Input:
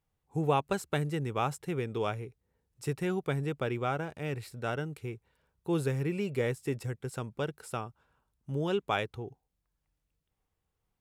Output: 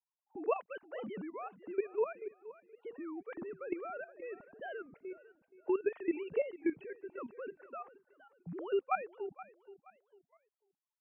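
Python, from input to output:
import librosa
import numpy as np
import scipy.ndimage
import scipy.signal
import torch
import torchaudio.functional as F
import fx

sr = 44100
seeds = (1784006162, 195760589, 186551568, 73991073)

p1 = fx.sine_speech(x, sr)
p2 = fx.level_steps(p1, sr, step_db=14)
p3 = fx.env_lowpass(p2, sr, base_hz=870.0, full_db=-29.0)
p4 = p3 + fx.echo_feedback(p3, sr, ms=474, feedback_pct=32, wet_db=-17, dry=0)
y = fx.record_warp(p4, sr, rpm=33.33, depth_cents=250.0)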